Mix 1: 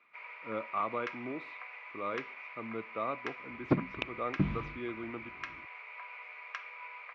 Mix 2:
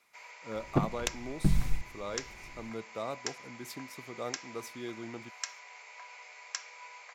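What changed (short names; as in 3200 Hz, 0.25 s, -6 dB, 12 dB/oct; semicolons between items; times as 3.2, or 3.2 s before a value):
second sound: entry -2.95 s; master: remove speaker cabinet 100–2900 Hz, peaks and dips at 150 Hz -4 dB, 300 Hz +4 dB, 800 Hz -4 dB, 1200 Hz +8 dB, 2400 Hz +6 dB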